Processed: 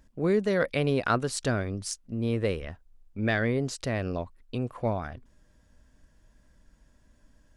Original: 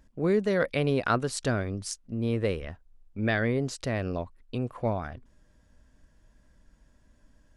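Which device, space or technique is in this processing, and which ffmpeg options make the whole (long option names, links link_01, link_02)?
exciter from parts: -filter_complex "[0:a]asplit=2[link_01][link_02];[link_02]highpass=frequency=4000:poles=1,asoftclip=type=tanh:threshold=-33dB,volume=-11dB[link_03];[link_01][link_03]amix=inputs=2:normalize=0"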